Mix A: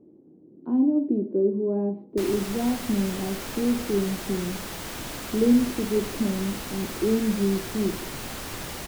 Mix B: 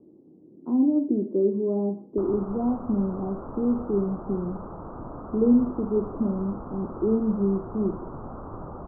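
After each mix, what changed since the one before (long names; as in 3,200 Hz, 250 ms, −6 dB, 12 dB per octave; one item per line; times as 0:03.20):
master: add Butterworth low-pass 1,300 Hz 72 dB per octave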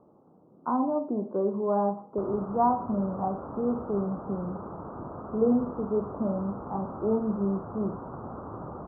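speech: remove low-pass with resonance 330 Hz, resonance Q 3.8
background: add high-pass filter 83 Hz 12 dB per octave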